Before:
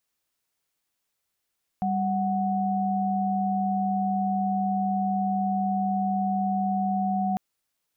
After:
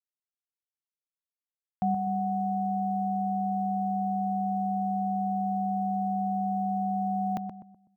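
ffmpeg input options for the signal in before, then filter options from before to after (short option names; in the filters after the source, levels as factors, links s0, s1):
-f lavfi -i "aevalsrc='0.0531*(sin(2*PI*196*t)+sin(2*PI*739.99*t))':d=5.55:s=44100"
-filter_complex "[0:a]highpass=63,aeval=exprs='val(0)*gte(abs(val(0)),0.00141)':c=same,asplit=2[s0][s1];[s1]adelay=125,lowpass=f=900:p=1,volume=0.501,asplit=2[s2][s3];[s3]adelay=125,lowpass=f=900:p=1,volume=0.39,asplit=2[s4][s5];[s5]adelay=125,lowpass=f=900:p=1,volume=0.39,asplit=2[s6][s7];[s7]adelay=125,lowpass=f=900:p=1,volume=0.39,asplit=2[s8][s9];[s9]adelay=125,lowpass=f=900:p=1,volume=0.39[s10];[s2][s4][s6][s8][s10]amix=inputs=5:normalize=0[s11];[s0][s11]amix=inputs=2:normalize=0"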